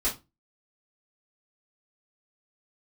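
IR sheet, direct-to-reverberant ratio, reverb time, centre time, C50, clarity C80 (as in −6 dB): −9.5 dB, 0.25 s, 21 ms, 11.0 dB, 20.0 dB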